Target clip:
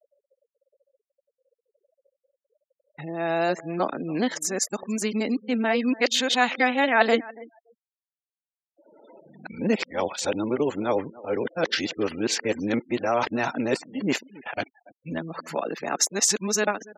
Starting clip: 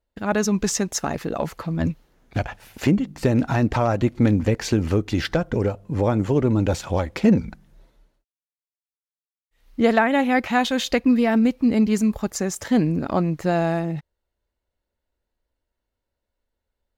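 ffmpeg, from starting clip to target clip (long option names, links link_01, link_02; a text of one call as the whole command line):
ffmpeg -i in.wav -af "areverse,highpass=320,acompressor=mode=upward:threshold=-30dB:ratio=2.5,aecho=1:1:284|568:0.0944|0.0151,afftfilt=real='re*gte(hypot(re,im),0.0112)':imag='im*gte(hypot(re,im),0.0112)':win_size=1024:overlap=0.75,adynamicequalizer=threshold=0.0126:dfrequency=1900:dqfactor=0.7:tfrequency=1900:tqfactor=0.7:attack=5:release=100:ratio=0.375:range=3:mode=boostabove:tftype=highshelf,volume=-1.5dB" out.wav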